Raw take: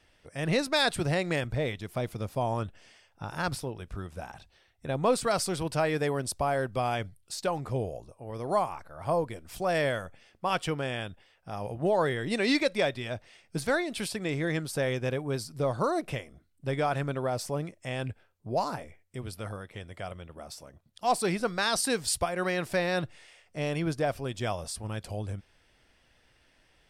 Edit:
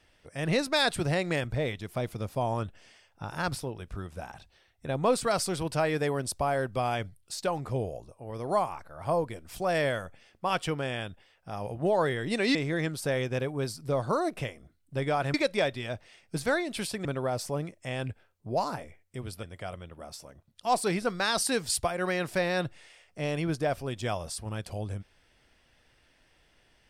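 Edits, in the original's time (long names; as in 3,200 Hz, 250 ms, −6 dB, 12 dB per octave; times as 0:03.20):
0:12.55–0:14.26: move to 0:17.05
0:19.43–0:19.81: remove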